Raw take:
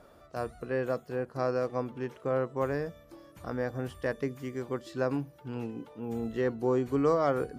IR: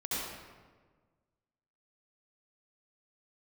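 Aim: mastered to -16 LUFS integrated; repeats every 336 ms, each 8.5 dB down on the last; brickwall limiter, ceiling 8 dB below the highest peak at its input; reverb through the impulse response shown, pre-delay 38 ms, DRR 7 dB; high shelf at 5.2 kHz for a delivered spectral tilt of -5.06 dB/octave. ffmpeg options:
-filter_complex "[0:a]highshelf=f=5200:g=3.5,alimiter=limit=0.0708:level=0:latency=1,aecho=1:1:336|672|1008|1344:0.376|0.143|0.0543|0.0206,asplit=2[s0][s1];[1:a]atrim=start_sample=2205,adelay=38[s2];[s1][s2]afir=irnorm=-1:irlink=0,volume=0.237[s3];[s0][s3]amix=inputs=2:normalize=0,volume=7.94"

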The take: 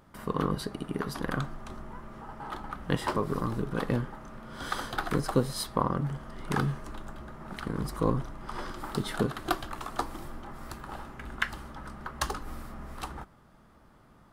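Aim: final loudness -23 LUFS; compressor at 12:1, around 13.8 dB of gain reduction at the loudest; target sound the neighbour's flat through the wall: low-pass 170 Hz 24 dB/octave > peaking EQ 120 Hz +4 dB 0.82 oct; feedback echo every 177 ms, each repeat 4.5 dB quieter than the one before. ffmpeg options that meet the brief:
-af "acompressor=threshold=0.0178:ratio=12,lowpass=f=170:w=0.5412,lowpass=f=170:w=1.3066,equalizer=f=120:t=o:w=0.82:g=4,aecho=1:1:177|354|531|708|885|1062|1239|1416|1593:0.596|0.357|0.214|0.129|0.0772|0.0463|0.0278|0.0167|0.01,volume=12.6"

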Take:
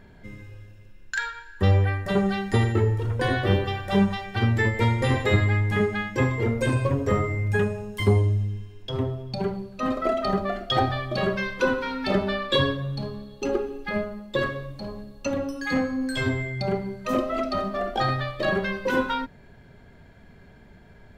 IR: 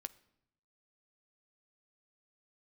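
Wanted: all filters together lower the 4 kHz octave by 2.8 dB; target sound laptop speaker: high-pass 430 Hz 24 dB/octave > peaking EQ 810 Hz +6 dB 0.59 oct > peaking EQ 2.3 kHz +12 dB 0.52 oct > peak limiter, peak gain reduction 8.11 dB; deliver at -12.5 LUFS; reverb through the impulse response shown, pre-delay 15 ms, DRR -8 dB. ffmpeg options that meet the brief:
-filter_complex "[0:a]equalizer=f=4000:t=o:g=-7,asplit=2[s0][s1];[1:a]atrim=start_sample=2205,adelay=15[s2];[s1][s2]afir=irnorm=-1:irlink=0,volume=3.76[s3];[s0][s3]amix=inputs=2:normalize=0,highpass=f=430:w=0.5412,highpass=f=430:w=1.3066,equalizer=f=810:t=o:w=0.59:g=6,equalizer=f=2300:t=o:w=0.52:g=12,volume=2,alimiter=limit=0.794:level=0:latency=1"

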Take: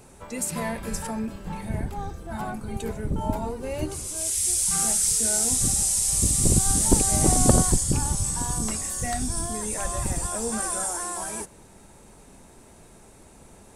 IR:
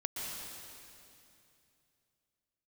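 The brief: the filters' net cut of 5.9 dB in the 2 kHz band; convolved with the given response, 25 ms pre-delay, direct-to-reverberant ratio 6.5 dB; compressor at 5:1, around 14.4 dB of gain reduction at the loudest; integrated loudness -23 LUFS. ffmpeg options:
-filter_complex "[0:a]equalizer=f=2000:t=o:g=-8,acompressor=threshold=0.0355:ratio=5,asplit=2[s0][s1];[1:a]atrim=start_sample=2205,adelay=25[s2];[s1][s2]afir=irnorm=-1:irlink=0,volume=0.355[s3];[s0][s3]amix=inputs=2:normalize=0,volume=2.37"

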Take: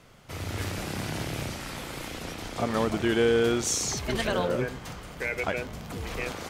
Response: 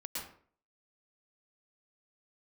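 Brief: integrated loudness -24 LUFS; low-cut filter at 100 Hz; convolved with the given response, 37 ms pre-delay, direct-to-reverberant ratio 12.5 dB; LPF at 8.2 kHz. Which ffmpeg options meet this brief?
-filter_complex "[0:a]highpass=100,lowpass=8200,asplit=2[s0][s1];[1:a]atrim=start_sample=2205,adelay=37[s2];[s1][s2]afir=irnorm=-1:irlink=0,volume=0.224[s3];[s0][s3]amix=inputs=2:normalize=0,volume=1.78"

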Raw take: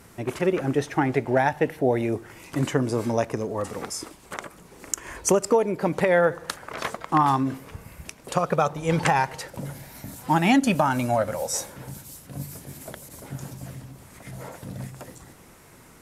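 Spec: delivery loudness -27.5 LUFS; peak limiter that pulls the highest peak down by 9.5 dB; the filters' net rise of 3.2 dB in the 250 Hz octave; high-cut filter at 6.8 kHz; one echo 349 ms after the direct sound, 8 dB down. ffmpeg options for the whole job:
-af "lowpass=6800,equalizer=f=250:t=o:g=4,alimiter=limit=0.188:level=0:latency=1,aecho=1:1:349:0.398,volume=0.944"

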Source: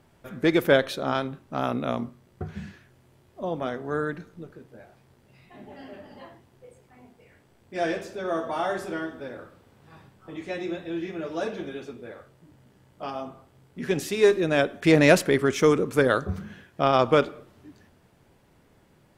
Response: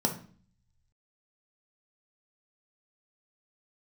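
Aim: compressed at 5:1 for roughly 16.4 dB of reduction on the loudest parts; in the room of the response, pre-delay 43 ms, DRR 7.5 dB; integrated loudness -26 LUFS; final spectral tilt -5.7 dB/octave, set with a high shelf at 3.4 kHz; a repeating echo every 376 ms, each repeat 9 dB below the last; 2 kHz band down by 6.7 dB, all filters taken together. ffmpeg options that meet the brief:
-filter_complex "[0:a]equalizer=f=2000:t=o:g=-7.5,highshelf=f=3400:g=-5.5,acompressor=threshold=0.0224:ratio=5,aecho=1:1:376|752|1128|1504:0.355|0.124|0.0435|0.0152,asplit=2[s0][s1];[1:a]atrim=start_sample=2205,adelay=43[s2];[s1][s2]afir=irnorm=-1:irlink=0,volume=0.168[s3];[s0][s3]amix=inputs=2:normalize=0,volume=3.16"

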